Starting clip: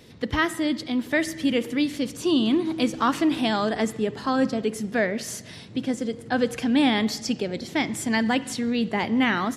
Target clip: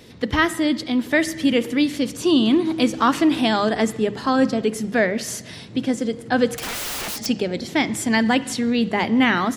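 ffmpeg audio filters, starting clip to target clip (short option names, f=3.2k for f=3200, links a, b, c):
-filter_complex "[0:a]bandreject=f=50:t=h:w=6,bandreject=f=100:t=h:w=6,bandreject=f=150:t=h:w=6,bandreject=f=200:t=h:w=6,asettb=1/sr,asplit=3[a][b][c];[a]atrim=end=6.574[d];[b]atrim=start=6.57:end=7.26,asetpts=PTS-STARTPTS,afade=t=in:d=0.004:c=qsin,afade=t=out:st=0.686:d=0.004:c=qsin,aeval=exprs='(mod(25.1*val(0)+1,2)-1)/25.1':c=same[e];[c]atrim=start=7.256[f];[d][e]acrossfade=d=0.004:c1=hsin:c2=qsin[g];[g][f]acrossfade=d=0.004:c1=qsin:c2=hsin,volume=4.5dB"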